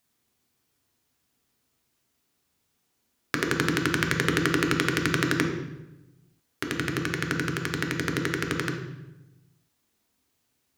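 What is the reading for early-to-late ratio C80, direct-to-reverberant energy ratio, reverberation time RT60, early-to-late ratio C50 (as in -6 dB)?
7.0 dB, 1.0 dB, 1.0 s, 5.0 dB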